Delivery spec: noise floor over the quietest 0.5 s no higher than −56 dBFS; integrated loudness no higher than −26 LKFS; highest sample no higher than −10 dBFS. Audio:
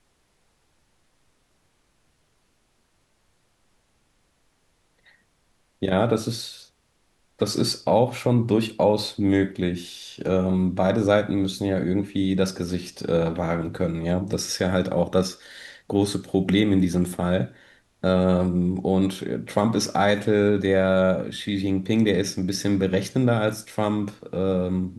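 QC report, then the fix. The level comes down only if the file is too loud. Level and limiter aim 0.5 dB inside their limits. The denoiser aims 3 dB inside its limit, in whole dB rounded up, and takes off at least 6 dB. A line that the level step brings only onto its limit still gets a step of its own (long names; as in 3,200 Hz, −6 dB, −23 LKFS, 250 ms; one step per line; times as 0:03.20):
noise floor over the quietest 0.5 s −66 dBFS: in spec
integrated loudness −23.5 LKFS: out of spec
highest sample −6.0 dBFS: out of spec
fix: level −3 dB
brickwall limiter −10.5 dBFS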